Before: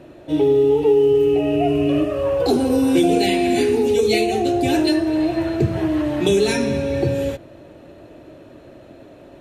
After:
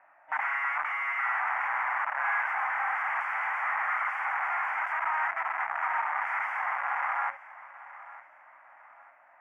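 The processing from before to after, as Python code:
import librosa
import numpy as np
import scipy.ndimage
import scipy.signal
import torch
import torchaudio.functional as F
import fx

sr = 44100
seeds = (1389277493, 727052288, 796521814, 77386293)

y = (np.mod(10.0 ** (17.5 / 20.0) * x + 1.0, 2.0) - 1.0) / 10.0 ** (17.5 / 20.0)
y = scipy.signal.sosfilt(scipy.signal.ellip(3, 1.0, 40, [790.0, 2100.0], 'bandpass', fs=sr, output='sos'), y)
y = fx.echo_feedback(y, sr, ms=904, feedback_pct=39, wet_db=-17.5)
y = F.gain(torch.from_numpy(y), -3.0).numpy()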